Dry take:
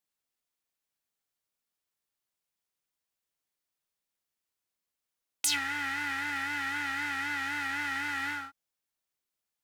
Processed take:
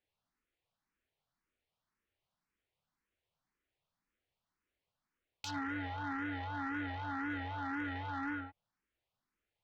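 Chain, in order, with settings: low-pass 2.8 kHz 12 dB/octave; low-pass that closes with the level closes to 920 Hz, closed at -34 dBFS; bass shelf 190 Hz +8 dB; saturation -36.5 dBFS, distortion -13 dB; barber-pole phaser +1.9 Hz; trim +7 dB

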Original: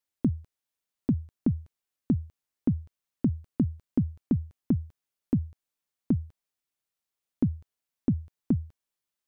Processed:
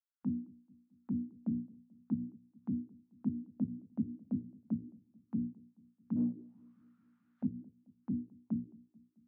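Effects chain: spectral noise reduction 12 dB; hum notches 60/120/180/240/300/360/420/480 Hz; peak limiter -27 dBFS, peak gain reduction 10.5 dB; 6.16–7.43 s: overdrive pedal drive 36 dB, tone 1.2 kHz, clips at -27 dBFS; chorus 1.3 Hz, delay 17 ms, depth 3.6 ms; auto-wah 240–1400 Hz, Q 4.7, down, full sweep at -37 dBFS; filtered feedback delay 218 ms, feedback 60%, low-pass 1 kHz, level -23 dB; trim +9.5 dB

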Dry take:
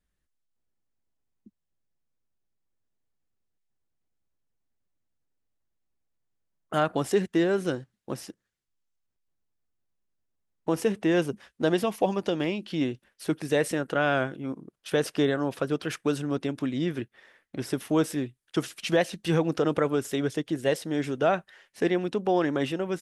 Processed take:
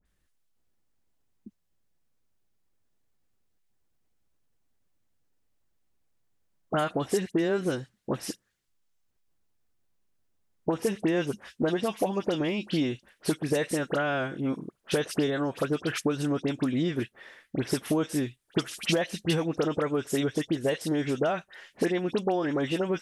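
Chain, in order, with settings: compression, threshold -30 dBFS, peak gain reduction 11.5 dB; phase dispersion highs, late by 56 ms, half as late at 2 kHz; trim +6.5 dB

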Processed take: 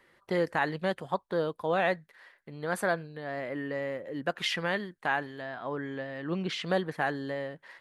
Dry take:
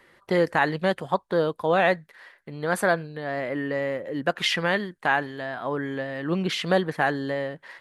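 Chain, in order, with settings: 5.42–6.69 s: low-pass 7.6 kHz 12 dB/octave; trim -6.5 dB

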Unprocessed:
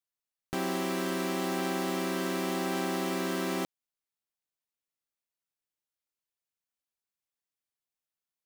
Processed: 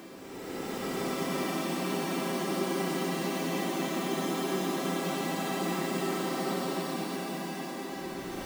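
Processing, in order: gate with hold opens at -22 dBFS; Paulstretch 41×, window 0.05 s, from 2.42 s

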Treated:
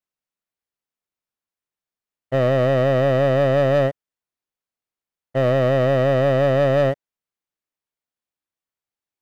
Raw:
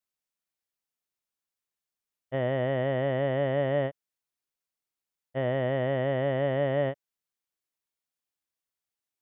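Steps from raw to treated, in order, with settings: treble shelf 3.3 kHz -8.5 dB; waveshaping leveller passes 2; trim +6 dB

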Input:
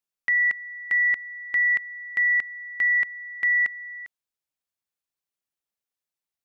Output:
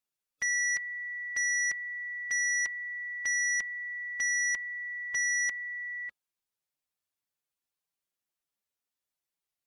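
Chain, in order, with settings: time stretch by phase-locked vocoder 1.5×; sine folder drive 5 dB, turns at -17 dBFS; trim -9 dB

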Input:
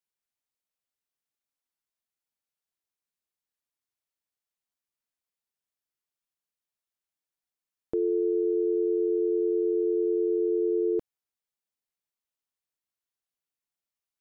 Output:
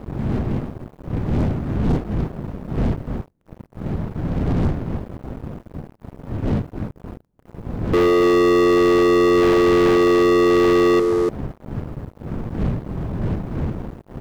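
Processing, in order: wind noise 160 Hz -42 dBFS; bass shelf 100 Hz -6 dB; delay 295 ms -10.5 dB; waveshaping leveller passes 5; trim +4 dB

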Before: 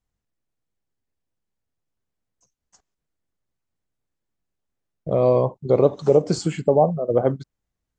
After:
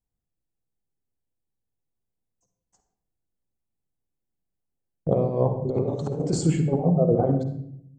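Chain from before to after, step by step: compressor with a negative ratio -21 dBFS, ratio -0.5; gate -40 dBFS, range -9 dB; high-order bell 2.6 kHz -9 dB 2.8 oct; band-stop 610 Hz, Q 12; on a send: reverberation RT60 0.70 s, pre-delay 46 ms, DRR 7.5 dB

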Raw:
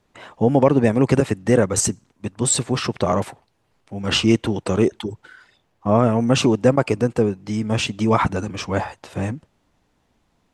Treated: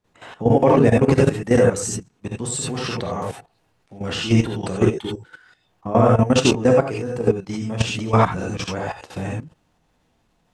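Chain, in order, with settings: gated-style reverb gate 110 ms rising, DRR -2.5 dB; level held to a coarse grid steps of 13 dB

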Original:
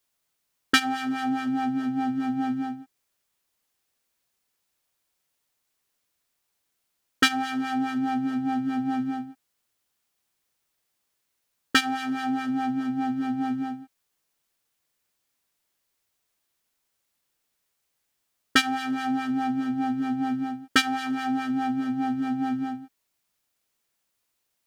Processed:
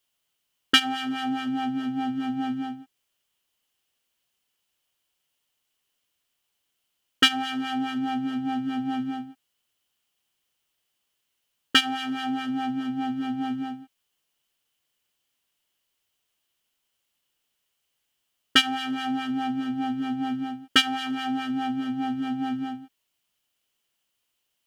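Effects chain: peaking EQ 3 kHz +12 dB 0.28 oct; trim -1.5 dB

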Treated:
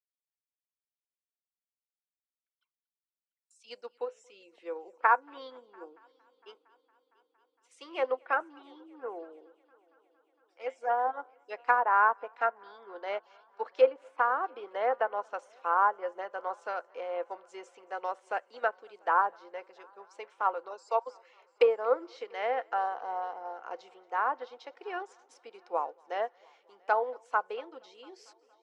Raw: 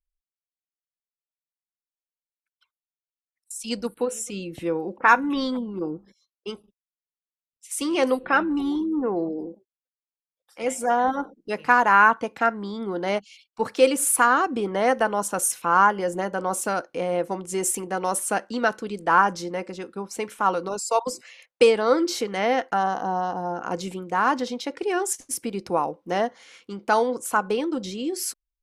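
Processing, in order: low-pass that closes with the level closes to 1.2 kHz, closed at -15.5 dBFS; high-pass 460 Hz 24 dB/octave; distance through air 130 m; on a send: multi-head delay 230 ms, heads first and third, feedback 63%, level -23 dB; on the sum: upward expansion 1.5:1, over -40 dBFS; trim -2 dB

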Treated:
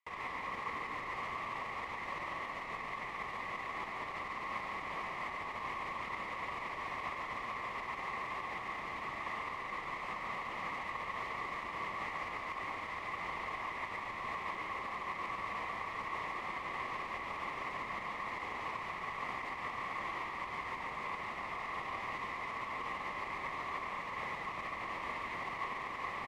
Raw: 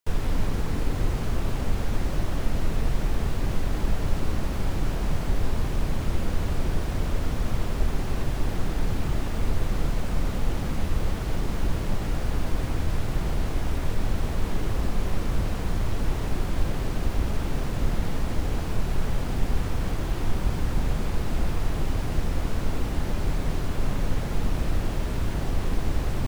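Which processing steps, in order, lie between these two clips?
peak limiter -20 dBFS, peak gain reduction 10 dB; two resonant band-passes 1.5 kHz, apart 0.85 oct; delay 142 ms -5 dB; reverberation, pre-delay 3 ms, DRR 10.5 dB; trim +8 dB

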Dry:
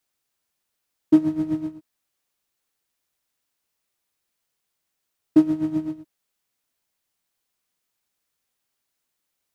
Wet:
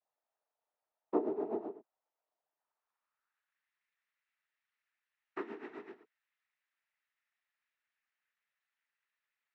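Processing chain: overdrive pedal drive 16 dB, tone 1.8 kHz, clips at -5 dBFS; noise-vocoded speech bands 12; band-pass sweep 700 Hz -> 1.9 kHz, 2.44–3.66 s; trim -4.5 dB

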